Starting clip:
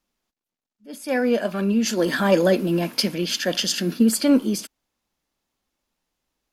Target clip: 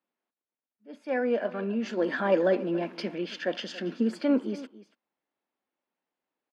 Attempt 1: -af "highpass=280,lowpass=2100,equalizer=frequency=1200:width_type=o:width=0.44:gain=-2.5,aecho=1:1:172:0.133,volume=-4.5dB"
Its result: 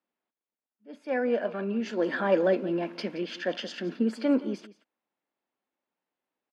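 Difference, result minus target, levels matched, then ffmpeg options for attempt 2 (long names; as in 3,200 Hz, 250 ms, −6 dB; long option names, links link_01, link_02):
echo 110 ms early
-af "highpass=280,lowpass=2100,equalizer=frequency=1200:width_type=o:width=0.44:gain=-2.5,aecho=1:1:282:0.133,volume=-4.5dB"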